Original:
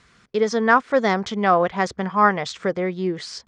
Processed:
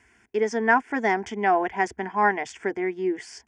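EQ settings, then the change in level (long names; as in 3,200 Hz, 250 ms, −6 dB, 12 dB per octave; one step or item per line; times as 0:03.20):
high-pass filter 56 Hz
phaser with its sweep stopped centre 810 Hz, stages 8
0.0 dB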